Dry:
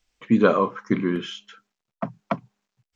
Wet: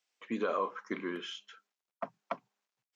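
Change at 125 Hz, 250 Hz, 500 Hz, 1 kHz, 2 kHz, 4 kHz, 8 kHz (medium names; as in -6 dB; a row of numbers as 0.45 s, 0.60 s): -23.5 dB, -17.5 dB, -13.0 dB, -10.0 dB, -10.5 dB, -7.5 dB, no reading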